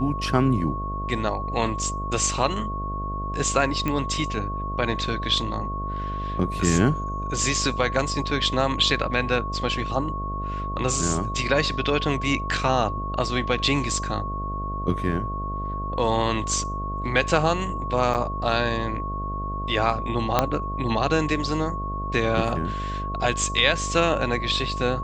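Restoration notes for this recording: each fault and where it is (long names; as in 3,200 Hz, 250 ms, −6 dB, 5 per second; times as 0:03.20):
mains buzz 50 Hz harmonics 14 −31 dBFS
whistle 1,100 Hz −30 dBFS
0:03.88: click −13 dBFS
0:18.14–0:18.15: drop-out 8.3 ms
0:20.39: click −4 dBFS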